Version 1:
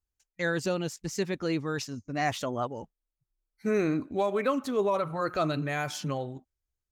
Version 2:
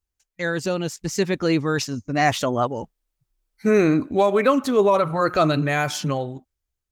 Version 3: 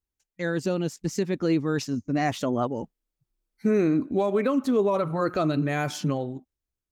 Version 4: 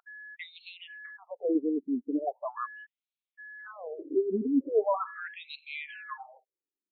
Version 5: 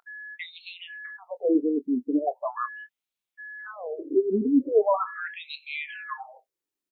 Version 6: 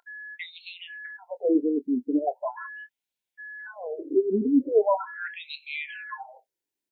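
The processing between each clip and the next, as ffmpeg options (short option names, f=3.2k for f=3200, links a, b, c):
-af "dynaudnorm=f=220:g=9:m=6dB,volume=3.5dB"
-af "equalizer=f=250:t=o:w=1.9:g=8.5,alimiter=limit=-7.5dB:level=0:latency=1:release=364,volume=-7dB"
-af "aeval=exprs='val(0)+0.00708*sin(2*PI*1700*n/s)':c=same,afftfilt=real='re*between(b*sr/1024,300*pow(3100/300,0.5+0.5*sin(2*PI*0.4*pts/sr))/1.41,300*pow(3100/300,0.5+0.5*sin(2*PI*0.4*pts/sr))*1.41)':imag='im*between(b*sr/1024,300*pow(3100/300,0.5+0.5*sin(2*PI*0.4*pts/sr))/1.41,300*pow(3100/300,0.5+0.5*sin(2*PI*0.4*pts/sr))*1.41)':win_size=1024:overlap=0.75"
-filter_complex "[0:a]asplit=2[a][b];[b]adelay=24,volume=-13.5dB[c];[a][c]amix=inputs=2:normalize=0,volume=5dB"
-af "asuperstop=centerf=1200:order=12:qfactor=4.2"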